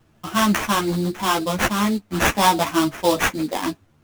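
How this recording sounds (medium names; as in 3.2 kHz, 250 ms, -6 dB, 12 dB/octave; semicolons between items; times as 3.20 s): aliases and images of a low sample rate 4.4 kHz, jitter 20%; a shimmering, thickened sound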